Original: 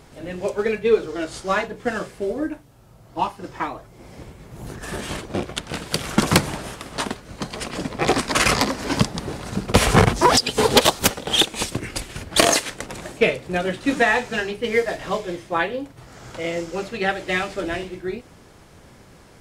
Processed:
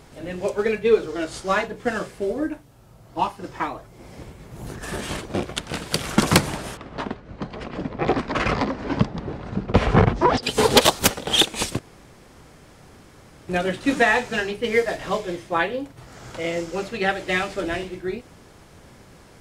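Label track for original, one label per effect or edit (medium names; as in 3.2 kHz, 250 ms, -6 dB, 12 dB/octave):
6.770000	10.430000	tape spacing loss at 10 kHz 30 dB
11.790000	13.480000	room tone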